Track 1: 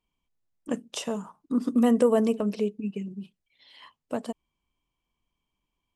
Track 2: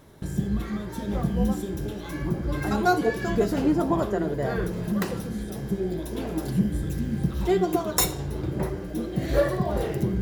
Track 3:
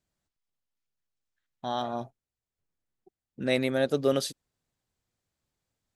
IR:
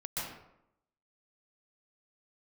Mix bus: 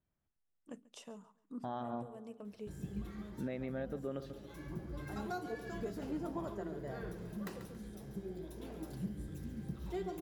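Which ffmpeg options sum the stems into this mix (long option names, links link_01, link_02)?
-filter_complex "[0:a]volume=-19.5dB,asplit=2[link_01][link_02];[link_02]volume=-22dB[link_03];[1:a]adelay=2450,volume=-16.5dB,asplit=2[link_04][link_05];[link_05]volume=-11dB[link_06];[2:a]lowpass=1400,equalizer=frequency=620:width_type=o:width=2.1:gain=-4.5,volume=0dB,asplit=3[link_07][link_08][link_09];[link_08]volume=-15dB[link_10];[link_09]apad=whole_len=262475[link_11];[link_01][link_11]sidechaincompress=threshold=-42dB:ratio=8:attack=12:release=622[link_12];[link_03][link_06][link_10]amix=inputs=3:normalize=0,aecho=0:1:139|278|417|556|695:1|0.32|0.102|0.0328|0.0105[link_13];[link_12][link_04][link_07][link_13]amix=inputs=4:normalize=0,alimiter=level_in=6dB:limit=-24dB:level=0:latency=1:release=402,volume=-6dB"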